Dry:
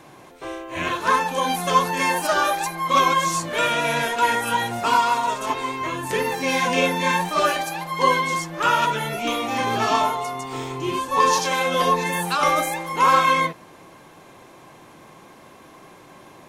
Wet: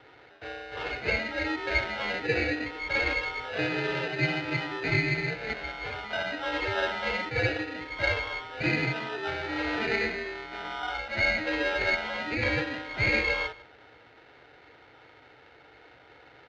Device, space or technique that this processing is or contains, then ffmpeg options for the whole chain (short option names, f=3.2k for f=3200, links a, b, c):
ring modulator pedal into a guitar cabinet: -filter_complex "[0:a]lowpass=f=1.8k:w=0.5412,lowpass=f=1.8k:w=1.3066,asettb=1/sr,asplit=3[a][b][c];[a]atrim=end=10.634[d];[b]atrim=start=10.63:end=12.33,asetpts=PTS-STARTPTS,afade=t=in:d=0.004:c=qsin,afade=t=out:st=1.696:d=0.004:c=qsin,asplit=2[e][f];[f]adelay=15,volume=-4.5dB[g];[e][g]amix=inputs=2:normalize=0,atrim=end_sample=74970[h];[c]atrim=start=12.326[i];[d][h]acrossfade=d=0.004:c1=hsin:c2=qsin[j];[j][i]acrossfade=d=0.004:c1=qsin:c2=hsin,aecho=1:1:155:0.0944,aeval=exprs='val(0)*sgn(sin(2*PI*1100*n/s))':c=same,highpass=76,equalizer=f=120:t=q:w=4:g=6,equalizer=f=200:t=q:w=4:g=-10,equalizer=f=310:t=q:w=4:g=4,equalizer=f=450:t=q:w=4:g=7,lowpass=f=4k:w=0.5412,lowpass=f=4k:w=1.3066,volume=-7.5dB"